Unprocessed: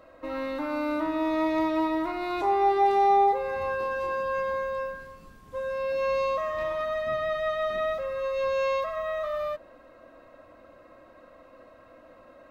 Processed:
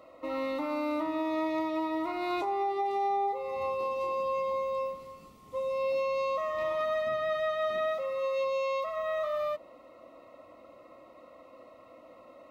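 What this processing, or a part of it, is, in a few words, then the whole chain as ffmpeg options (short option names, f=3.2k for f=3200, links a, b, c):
PA system with an anti-feedback notch: -filter_complex "[0:a]highpass=f=170:p=1,asuperstop=centerf=1600:order=4:qfactor=4,alimiter=limit=-23.5dB:level=0:latency=1:release=477,asettb=1/sr,asplit=3[a][b][c];[a]atrim=end=7.884[d];[b]atrim=start=7.88:end=8.86,asetpts=PTS-STARTPTS,afade=t=in:d=0.004:c=qsin,afade=t=out:st=0.976:d=0.004:c=qsin,highpass=f=160:p=1[e];[c]atrim=start=8.856[f];[d][e]acrossfade=d=0.004:c1=hsin:c2=qsin[g];[g][f]acrossfade=d=0.004:c1=qsin:c2=hsin"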